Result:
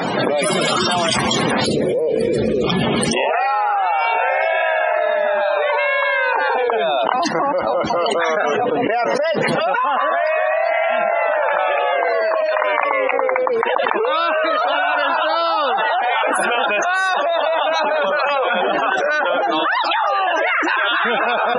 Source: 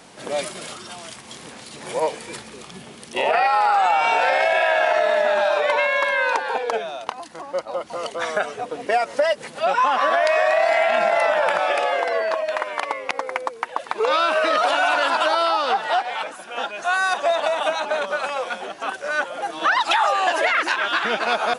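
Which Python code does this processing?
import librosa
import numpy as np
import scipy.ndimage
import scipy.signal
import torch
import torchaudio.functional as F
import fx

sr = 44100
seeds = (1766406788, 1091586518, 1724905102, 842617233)

y = fx.low_shelf_res(x, sr, hz=660.0, db=10.0, q=3.0, at=(1.67, 2.67))
y = fx.spec_topn(y, sr, count=64)
y = fx.env_flatten(y, sr, amount_pct=100)
y = y * librosa.db_to_amplitude(-12.5)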